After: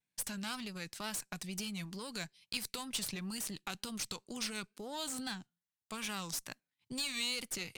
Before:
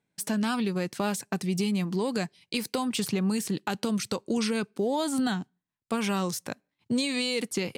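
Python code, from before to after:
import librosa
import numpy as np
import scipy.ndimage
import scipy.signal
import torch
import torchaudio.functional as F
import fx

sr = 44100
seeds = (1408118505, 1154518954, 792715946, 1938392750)

y = fx.wow_flutter(x, sr, seeds[0], rate_hz=2.1, depth_cents=92.0)
y = fx.tone_stack(y, sr, knobs='5-5-5')
y = fx.cheby_harmonics(y, sr, harmonics=(8,), levels_db=(-22,), full_scale_db=-23.0)
y = y * librosa.db_to_amplitude(2.0)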